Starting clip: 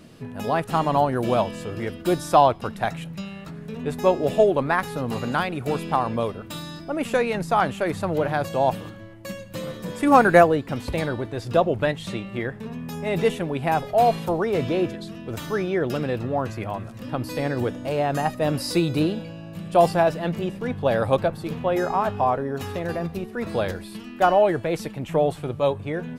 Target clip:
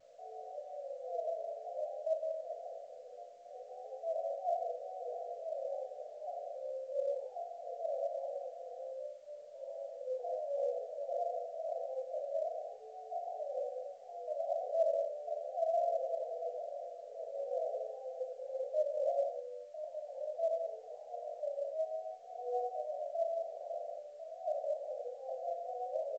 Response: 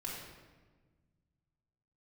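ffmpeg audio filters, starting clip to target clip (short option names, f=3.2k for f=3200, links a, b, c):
-filter_complex "[0:a]areverse,acompressor=threshold=-30dB:ratio=16,areverse,asetrate=78577,aresample=44100,atempo=0.561231,aresample=11025,aeval=exprs='sgn(val(0))*max(abs(val(0))-0.00355,0)':c=same,aresample=44100,asuperpass=centerf=590:order=12:qfactor=2.6,asplit=2[a][b];[b]adelay=38,volume=-14dB[c];[a][c]amix=inputs=2:normalize=0,aecho=1:1:23|39:0.422|0.501[d];[1:a]atrim=start_sample=2205,afade=t=out:st=0.33:d=0.01,atrim=end_sample=14994[e];[d][e]afir=irnorm=-1:irlink=0,volume=3.5dB" -ar 16000 -c:a pcm_alaw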